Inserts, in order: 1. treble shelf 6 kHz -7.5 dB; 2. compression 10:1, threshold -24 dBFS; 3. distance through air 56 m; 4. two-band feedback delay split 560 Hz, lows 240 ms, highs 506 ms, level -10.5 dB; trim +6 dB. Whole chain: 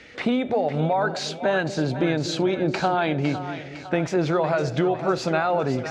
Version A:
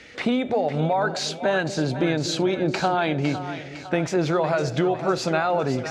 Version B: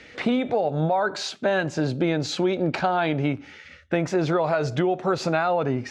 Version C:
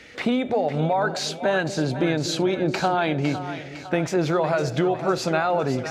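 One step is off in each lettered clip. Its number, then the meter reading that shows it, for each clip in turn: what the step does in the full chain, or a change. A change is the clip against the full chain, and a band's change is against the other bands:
1, 8 kHz band +4.0 dB; 4, echo-to-direct -9.0 dB to none; 3, 8 kHz band +4.0 dB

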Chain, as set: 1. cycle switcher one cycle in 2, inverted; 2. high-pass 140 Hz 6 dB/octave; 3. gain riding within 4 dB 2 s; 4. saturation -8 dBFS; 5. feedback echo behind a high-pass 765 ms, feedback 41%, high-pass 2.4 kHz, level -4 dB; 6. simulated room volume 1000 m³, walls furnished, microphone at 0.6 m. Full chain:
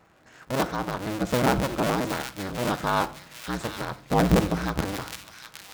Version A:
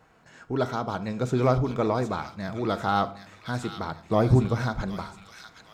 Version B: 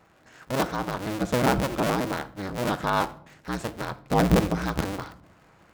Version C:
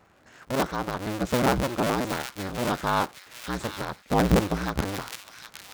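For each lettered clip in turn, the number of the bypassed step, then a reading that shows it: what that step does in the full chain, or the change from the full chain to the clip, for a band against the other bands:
1, 8 kHz band -9.5 dB; 5, echo-to-direct -7.5 dB to -12.0 dB; 6, echo-to-direct -7.5 dB to -9.5 dB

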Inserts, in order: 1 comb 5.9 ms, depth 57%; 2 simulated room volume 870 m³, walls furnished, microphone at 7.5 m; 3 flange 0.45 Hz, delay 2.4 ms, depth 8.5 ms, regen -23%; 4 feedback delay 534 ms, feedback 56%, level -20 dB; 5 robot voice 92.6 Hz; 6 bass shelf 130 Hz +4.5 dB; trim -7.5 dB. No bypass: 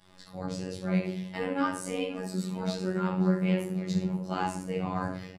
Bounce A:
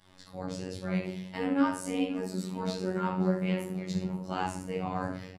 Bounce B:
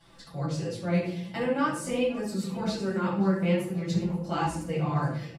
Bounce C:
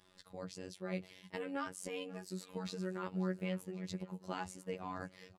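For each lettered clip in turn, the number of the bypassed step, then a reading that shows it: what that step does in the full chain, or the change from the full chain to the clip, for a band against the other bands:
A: 1, 125 Hz band -2.0 dB; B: 5, crest factor change -4.0 dB; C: 2, 125 Hz band -4.0 dB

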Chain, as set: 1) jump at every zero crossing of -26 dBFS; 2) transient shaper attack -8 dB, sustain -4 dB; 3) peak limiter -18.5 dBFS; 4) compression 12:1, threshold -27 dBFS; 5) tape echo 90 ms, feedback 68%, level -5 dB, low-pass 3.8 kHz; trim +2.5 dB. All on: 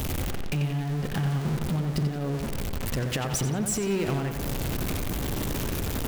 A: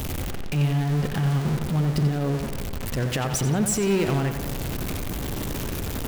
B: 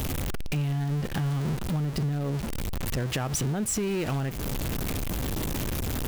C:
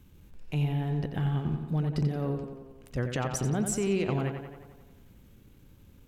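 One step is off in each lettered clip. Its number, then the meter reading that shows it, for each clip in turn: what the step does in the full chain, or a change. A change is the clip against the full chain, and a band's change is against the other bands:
4, mean gain reduction 2.0 dB; 5, echo-to-direct -18.5 dB to none; 1, distortion -8 dB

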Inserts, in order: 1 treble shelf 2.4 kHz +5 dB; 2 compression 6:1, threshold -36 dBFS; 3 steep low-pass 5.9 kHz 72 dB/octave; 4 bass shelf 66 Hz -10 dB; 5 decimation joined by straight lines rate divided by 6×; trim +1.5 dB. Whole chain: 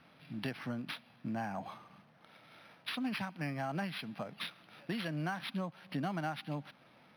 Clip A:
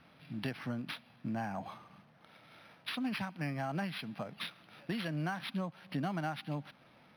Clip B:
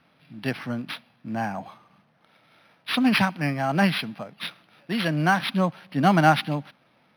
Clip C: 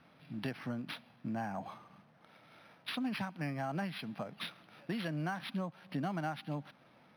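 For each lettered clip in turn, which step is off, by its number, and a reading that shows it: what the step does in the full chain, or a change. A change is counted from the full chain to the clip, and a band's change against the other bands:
4, 125 Hz band +1.5 dB; 2, mean gain reduction 11.0 dB; 1, 4 kHz band -1.5 dB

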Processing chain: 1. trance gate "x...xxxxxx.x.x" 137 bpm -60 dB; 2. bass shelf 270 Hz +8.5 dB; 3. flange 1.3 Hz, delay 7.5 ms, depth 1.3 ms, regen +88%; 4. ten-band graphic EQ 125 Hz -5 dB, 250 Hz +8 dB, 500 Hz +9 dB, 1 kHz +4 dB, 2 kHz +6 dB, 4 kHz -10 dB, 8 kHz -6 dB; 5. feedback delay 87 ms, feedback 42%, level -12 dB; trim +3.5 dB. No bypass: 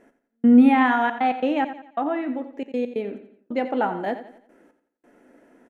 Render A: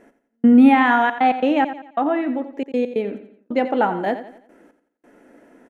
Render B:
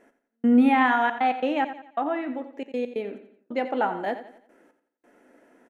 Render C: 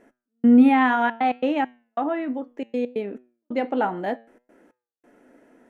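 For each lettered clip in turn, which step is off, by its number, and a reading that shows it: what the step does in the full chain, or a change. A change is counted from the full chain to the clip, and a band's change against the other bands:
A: 3, momentary loudness spread change -2 LU; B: 2, 250 Hz band -4.0 dB; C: 5, echo-to-direct -11.0 dB to none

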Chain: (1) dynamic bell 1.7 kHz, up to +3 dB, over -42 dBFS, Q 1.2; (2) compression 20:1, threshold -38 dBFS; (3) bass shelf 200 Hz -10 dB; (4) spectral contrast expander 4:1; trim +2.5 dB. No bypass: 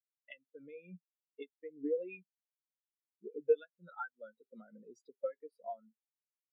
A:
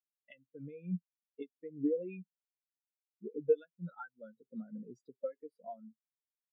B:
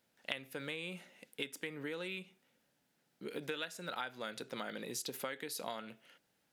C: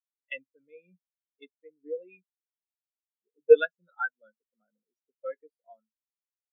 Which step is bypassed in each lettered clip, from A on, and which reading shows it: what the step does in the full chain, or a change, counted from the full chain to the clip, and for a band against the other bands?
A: 3, 250 Hz band +12.0 dB; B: 4, 500 Hz band -9.5 dB; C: 2, mean gain reduction 8.0 dB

